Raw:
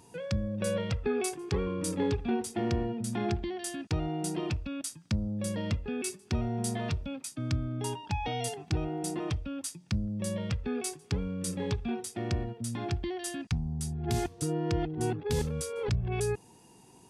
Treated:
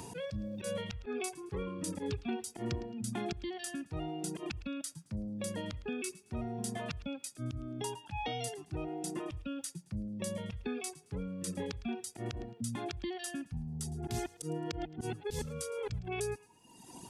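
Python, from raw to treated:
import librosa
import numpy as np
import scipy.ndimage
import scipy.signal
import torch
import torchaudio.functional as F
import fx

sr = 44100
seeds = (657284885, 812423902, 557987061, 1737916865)

p1 = fx.dereverb_blind(x, sr, rt60_s=1.3)
p2 = fx.auto_swell(p1, sr, attack_ms=106.0)
p3 = p2 + fx.echo_thinned(p2, sr, ms=109, feedback_pct=25, hz=1000.0, wet_db=-19.0, dry=0)
p4 = fx.band_squash(p3, sr, depth_pct=70)
y = p4 * 10.0 ** (-2.5 / 20.0)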